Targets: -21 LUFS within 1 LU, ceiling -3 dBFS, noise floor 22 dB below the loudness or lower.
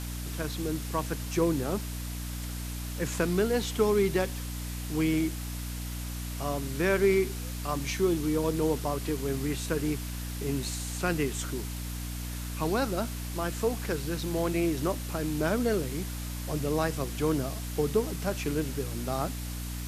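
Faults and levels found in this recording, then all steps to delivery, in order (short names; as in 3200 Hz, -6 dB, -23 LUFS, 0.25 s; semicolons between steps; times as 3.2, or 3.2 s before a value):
hum 60 Hz; harmonics up to 300 Hz; hum level -34 dBFS; noise floor -36 dBFS; noise floor target -53 dBFS; loudness -30.5 LUFS; peak -13.0 dBFS; loudness target -21.0 LUFS
-> de-hum 60 Hz, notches 5; denoiser 17 dB, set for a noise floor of -36 dBFS; gain +9.5 dB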